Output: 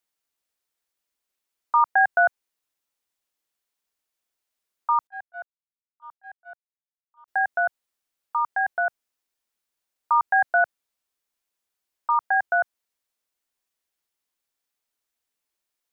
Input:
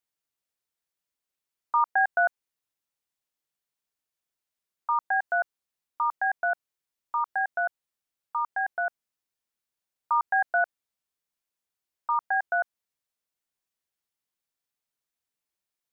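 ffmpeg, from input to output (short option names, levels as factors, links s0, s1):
-filter_complex "[0:a]asettb=1/sr,asplit=3[s0][s1][s2];[s0]atrim=end=5.074[s3];[s1]atrim=start=5.07:end=7.28,asetpts=PTS-STARTPTS,afade=t=in:d=0.004:c=qsin,afade=t=out:st=2.206:d=0.004:c=qsin,agate=range=0.00794:threshold=0.0891:ratio=16:detection=peak[s4];[s2]atrim=start=7.276[s5];[s3][s4]acrossfade=d=0.004:c1=hsin:c2=qsin[s6];[s6][s5]acrossfade=d=0.004:c1=qsin:c2=hsin,equalizer=f=130:t=o:w=0.76:g=-12,volume=1.68"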